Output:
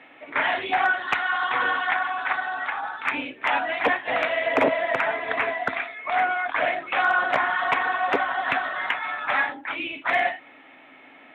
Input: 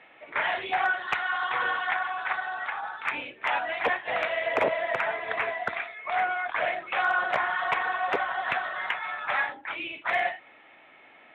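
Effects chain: HPF 53 Hz; bell 270 Hz +13 dB 0.24 oct; gain +4 dB

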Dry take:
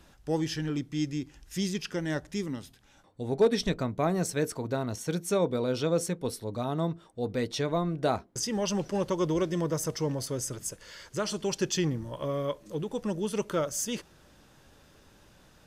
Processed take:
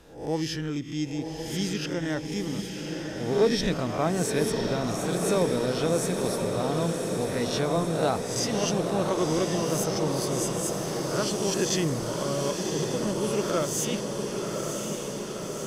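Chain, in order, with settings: spectral swells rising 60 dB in 0.52 s; diffused feedback echo 1.044 s, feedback 73%, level -5 dB

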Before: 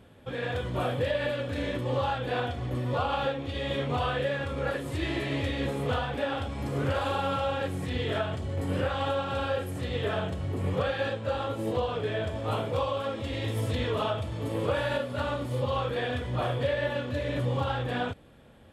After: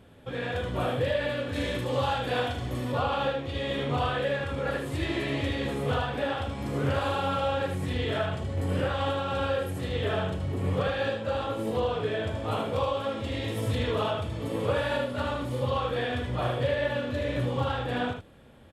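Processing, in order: 1.54–2.92 high shelf 4100 Hz +9 dB; echo 77 ms -6 dB

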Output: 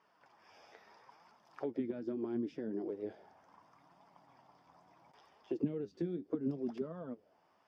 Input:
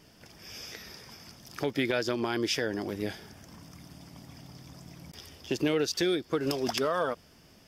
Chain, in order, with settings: flange 0.74 Hz, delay 4.3 ms, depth 8 ms, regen +48%; auto-wah 200–1100 Hz, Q 2.7, down, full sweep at -28.5 dBFS; gain +3 dB

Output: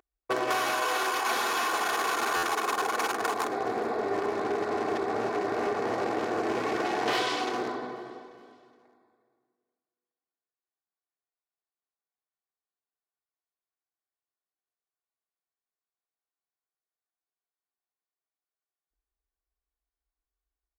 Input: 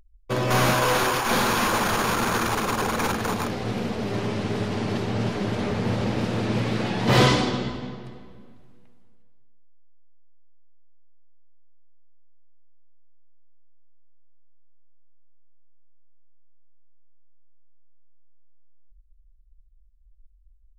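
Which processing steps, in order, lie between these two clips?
Wiener smoothing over 15 samples; HPF 470 Hz 12 dB/oct; comb 2.7 ms, depth 58%; compressor 12:1, threshold -30 dBFS, peak gain reduction 15.5 dB; on a send: feedback echo 0.419 s, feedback 41%, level -21.5 dB; on the sum: stuck buffer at 2.36, samples 512, times 5; Doppler distortion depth 0.19 ms; gain +5.5 dB

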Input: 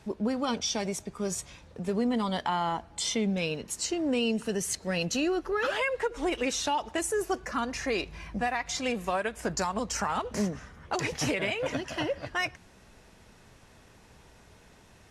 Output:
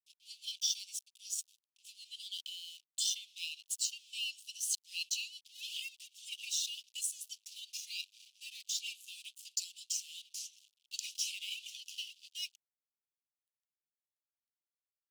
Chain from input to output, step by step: crossover distortion -43.5 dBFS; steep high-pass 2800 Hz 72 dB/oct

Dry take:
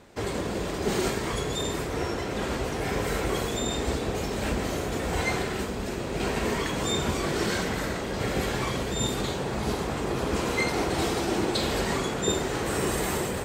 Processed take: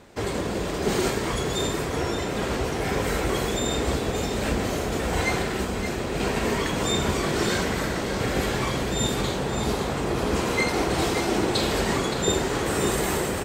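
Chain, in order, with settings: echo 0.569 s -9 dB; gain +2.5 dB

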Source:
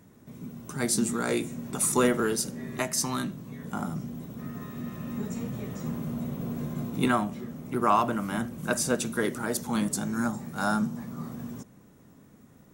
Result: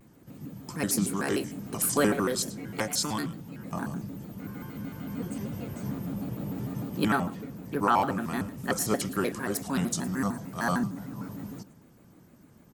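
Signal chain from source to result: on a send: echo 0.107 s -17 dB; on the sum: shaped vibrato square 6.6 Hz, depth 250 cents; gain -1 dB

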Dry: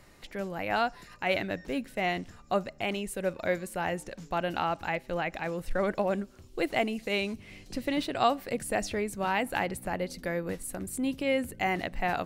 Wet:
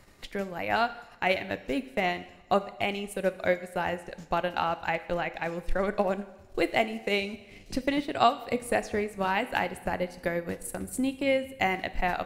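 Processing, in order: transient shaper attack +5 dB, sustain -10 dB; two-slope reverb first 0.85 s, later 2.9 s, DRR 11.5 dB

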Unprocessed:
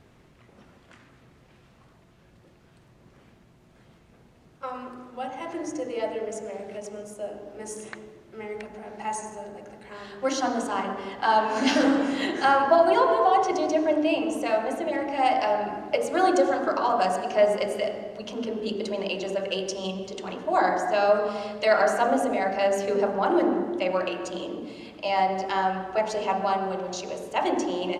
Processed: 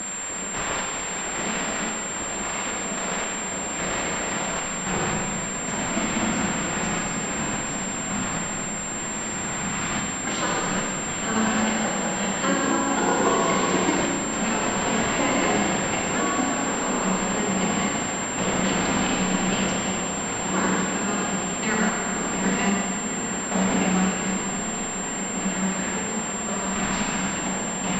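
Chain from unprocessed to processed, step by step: delta modulation 64 kbps, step -25.5 dBFS; spectral gate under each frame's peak -10 dB weak; bell 190 Hz +13 dB 0.84 oct; compressor 2:1, threshold -30 dBFS, peak gain reduction 6 dB; random-step tremolo 3.7 Hz, depth 90%; diffused feedback echo 1.697 s, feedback 79%, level -8.5 dB; Schroeder reverb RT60 2 s, combs from 32 ms, DRR 0 dB; pulse-width modulation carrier 7400 Hz; gain +8 dB

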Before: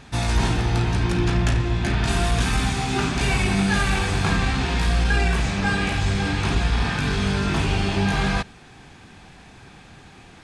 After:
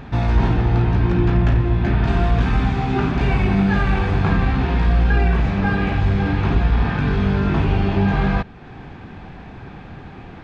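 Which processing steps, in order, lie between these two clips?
in parallel at +3 dB: compressor, threshold -36 dBFS, peak gain reduction 19 dB; on the sum: tape spacing loss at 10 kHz 37 dB; gain +3.5 dB

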